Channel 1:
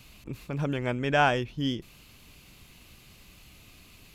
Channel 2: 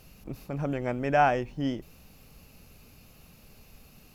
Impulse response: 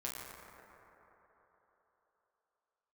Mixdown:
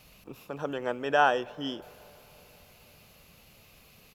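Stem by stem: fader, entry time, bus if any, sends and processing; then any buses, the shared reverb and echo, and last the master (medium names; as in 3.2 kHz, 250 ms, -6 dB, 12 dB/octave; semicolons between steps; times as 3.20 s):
-5.5 dB, 0.00 s, send -17.5 dB, graphic EQ 250/500/8000 Hz -10/+12/-6 dB; bass shelf 280 Hz -6.5 dB
-2.0 dB, 0.5 ms, polarity flipped, no send, high-pass 110 Hz 6 dB/octave; peaking EQ 400 Hz -9.5 dB 1.1 oct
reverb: on, RT60 3.9 s, pre-delay 7 ms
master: none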